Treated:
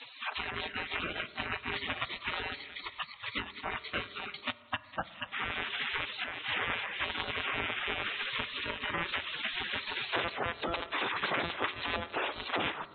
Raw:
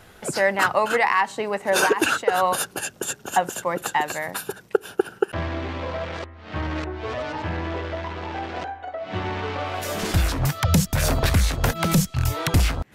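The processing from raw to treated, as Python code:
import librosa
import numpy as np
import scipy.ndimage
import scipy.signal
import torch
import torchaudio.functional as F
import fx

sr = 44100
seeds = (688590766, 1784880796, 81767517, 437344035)

y = fx.recorder_agc(x, sr, target_db=-10.0, rise_db_per_s=19.0, max_gain_db=30)
y = fx.echo_thinned(y, sr, ms=194, feedback_pct=50, hz=440.0, wet_db=-15.5)
y = fx.lpc_monotone(y, sr, seeds[0], pitch_hz=170.0, order=16)
y = fx.peak_eq(y, sr, hz=2900.0, db=-4.5, octaves=2.0)
y = fx.spec_gate(y, sr, threshold_db=-25, keep='weak')
y = fx.transient(y, sr, attack_db=6, sustain_db=-8, at=(4.28, 4.83), fade=0.02)
y = fx.spec_gate(y, sr, threshold_db=-20, keep='strong')
y = fx.air_absorb(y, sr, metres=130.0)
y = fx.rev_fdn(y, sr, rt60_s=1.2, lf_ratio=1.2, hf_ratio=0.35, size_ms=15.0, drr_db=15.5)
y = fx.band_squash(y, sr, depth_pct=70)
y = F.gain(torch.from_numpy(y), 4.5).numpy()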